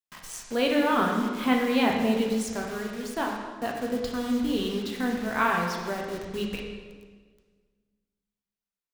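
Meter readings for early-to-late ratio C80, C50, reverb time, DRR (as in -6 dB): 5.0 dB, 3.0 dB, 1.5 s, -0.5 dB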